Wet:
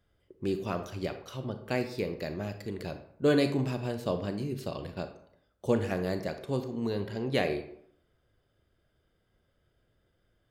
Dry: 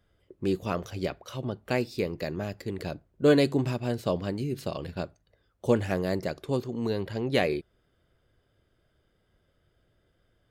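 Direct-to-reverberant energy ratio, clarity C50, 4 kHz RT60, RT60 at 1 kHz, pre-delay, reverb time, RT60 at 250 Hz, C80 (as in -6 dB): 8.0 dB, 10.0 dB, 0.40 s, 0.70 s, 30 ms, 0.70 s, 0.70 s, 13.0 dB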